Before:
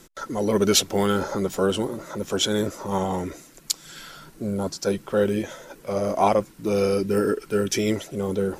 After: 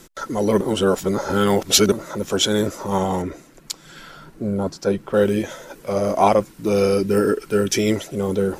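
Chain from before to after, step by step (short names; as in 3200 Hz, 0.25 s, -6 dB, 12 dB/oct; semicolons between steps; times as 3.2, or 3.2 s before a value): 0.61–1.92 reverse; 3.22–5.14 high shelf 3200 Hz -11 dB; gain +4 dB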